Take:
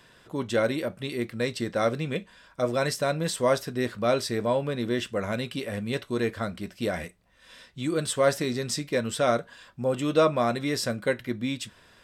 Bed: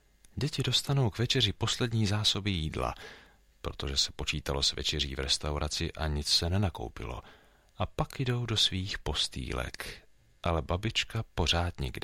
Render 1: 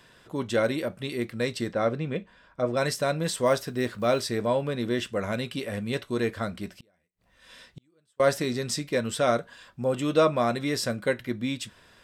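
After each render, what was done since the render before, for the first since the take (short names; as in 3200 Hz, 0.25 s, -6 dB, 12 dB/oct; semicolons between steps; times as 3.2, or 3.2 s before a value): 1.73–2.77 LPF 1800 Hz 6 dB/oct; 3.46–4.22 block floating point 7-bit; 6.73–8.2 flipped gate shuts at -33 dBFS, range -39 dB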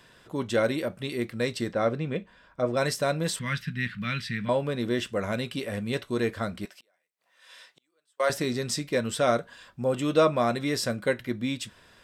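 3.39–4.49 EQ curve 110 Hz 0 dB, 170 Hz +10 dB, 360 Hz -20 dB, 680 Hz -25 dB, 1800 Hz +6 dB, 2800 Hz +5 dB, 6700 Hz -13 dB; 6.65–8.3 HPF 640 Hz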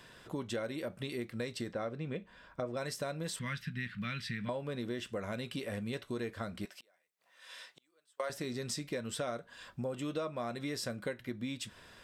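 compressor 5:1, threshold -36 dBFS, peak gain reduction 17.5 dB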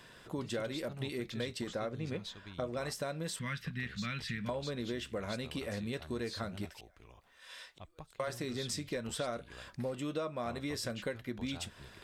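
add bed -19.5 dB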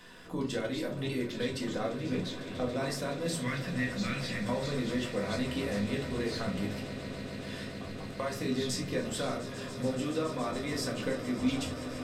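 swelling echo 0.141 s, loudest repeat 8, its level -17 dB; shoebox room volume 220 m³, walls furnished, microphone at 1.9 m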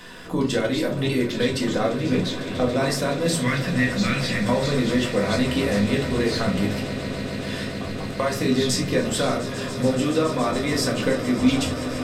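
gain +11 dB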